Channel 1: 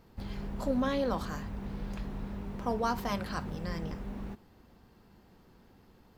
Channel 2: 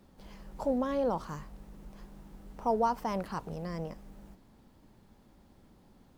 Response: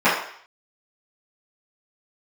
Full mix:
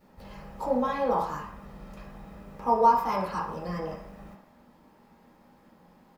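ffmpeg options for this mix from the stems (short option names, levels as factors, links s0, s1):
-filter_complex "[0:a]highshelf=f=7500:g=7.5,aecho=1:1:1.6:0.78,volume=0.266,asplit=2[s0][s1];[s1]volume=0.112[s2];[1:a]lowshelf=f=320:g=-4.5,adelay=5.7,volume=0.631,asplit=2[s3][s4];[s4]volume=0.211[s5];[2:a]atrim=start_sample=2205[s6];[s2][s5]amix=inputs=2:normalize=0[s7];[s7][s6]afir=irnorm=-1:irlink=0[s8];[s0][s3][s8]amix=inputs=3:normalize=0"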